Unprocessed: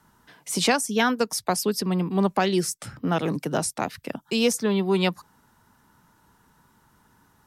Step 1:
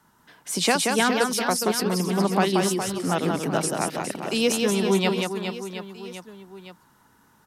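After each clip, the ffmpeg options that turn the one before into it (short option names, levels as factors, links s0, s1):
-filter_complex "[0:a]lowshelf=f=99:g=-9,asplit=2[s0][s1];[s1]aecho=0:1:180|414|718.2|1114|1628:0.631|0.398|0.251|0.158|0.1[s2];[s0][s2]amix=inputs=2:normalize=0"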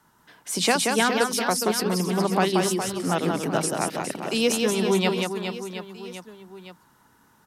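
-af "bandreject=f=50:t=h:w=6,bandreject=f=100:t=h:w=6,bandreject=f=150:t=h:w=6,bandreject=f=200:t=h:w=6,bandreject=f=250:t=h:w=6"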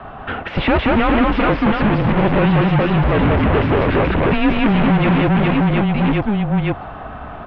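-filter_complex "[0:a]equalizer=f=125:t=o:w=1:g=7,equalizer=f=250:t=o:w=1:g=12,equalizer=f=500:t=o:w=1:g=6,asplit=2[s0][s1];[s1]highpass=f=720:p=1,volume=126,asoftclip=type=tanh:threshold=0.944[s2];[s0][s2]amix=inputs=2:normalize=0,lowpass=f=2300:p=1,volume=0.501,highpass=f=250:t=q:w=0.5412,highpass=f=250:t=q:w=1.307,lowpass=f=3300:t=q:w=0.5176,lowpass=f=3300:t=q:w=0.7071,lowpass=f=3300:t=q:w=1.932,afreqshift=-210,volume=0.501"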